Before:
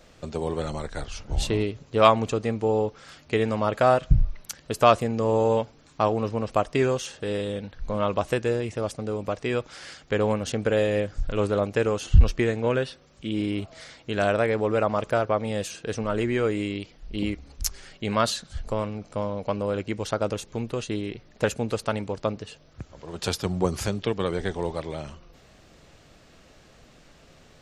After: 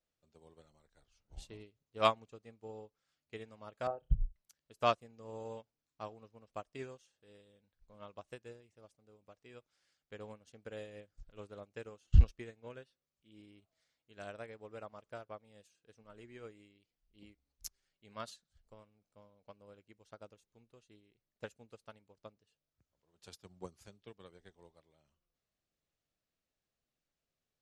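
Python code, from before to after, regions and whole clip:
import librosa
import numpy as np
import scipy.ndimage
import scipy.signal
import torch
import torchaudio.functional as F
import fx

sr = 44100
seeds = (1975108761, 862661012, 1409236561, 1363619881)

y = fx.chain(x, sr, fx.envelope_sharpen(power=2.0),
    fx.room_flutter(wall_m=5.8, rt60_s=0.24),
    fx.band_squash(depth_pct=40), at=(3.87, 4.36))
y = fx.high_shelf(y, sr, hz=2800.0, db=6.0)
y = fx.upward_expand(y, sr, threshold_db=-31.0, expansion=2.5)
y = y * 10.0 ** (-6.5 / 20.0)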